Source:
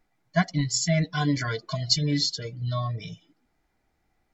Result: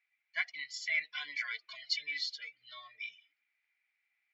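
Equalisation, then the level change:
high-pass with resonance 2,300 Hz, resonance Q 5.6
high-frequency loss of the air 190 metres
−6.5 dB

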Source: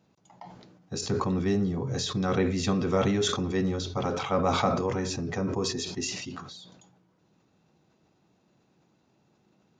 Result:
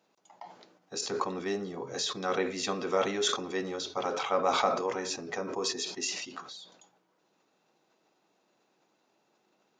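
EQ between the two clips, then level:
high-pass filter 420 Hz 12 dB per octave
0.0 dB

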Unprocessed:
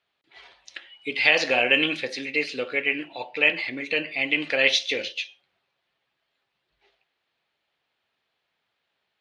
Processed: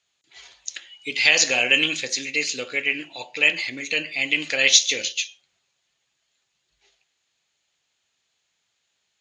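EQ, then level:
low-pass with resonance 6,800 Hz, resonance Q 11
low-shelf EQ 210 Hz +9 dB
high-shelf EQ 2,200 Hz +11.5 dB
−5.5 dB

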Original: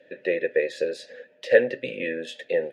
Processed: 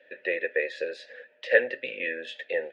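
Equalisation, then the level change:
resonant band-pass 2,400 Hz, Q 0.71
high-shelf EQ 3,200 Hz −11 dB
+5.5 dB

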